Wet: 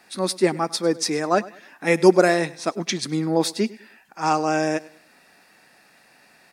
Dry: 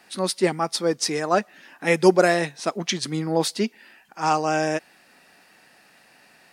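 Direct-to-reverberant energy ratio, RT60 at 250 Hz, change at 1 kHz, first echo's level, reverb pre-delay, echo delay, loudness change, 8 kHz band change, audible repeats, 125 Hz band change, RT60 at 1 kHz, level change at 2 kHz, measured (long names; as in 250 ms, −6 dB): no reverb audible, no reverb audible, 0.0 dB, −20.0 dB, no reverb audible, 101 ms, +1.0 dB, 0.0 dB, 2, +0.5 dB, no reverb audible, 0.0 dB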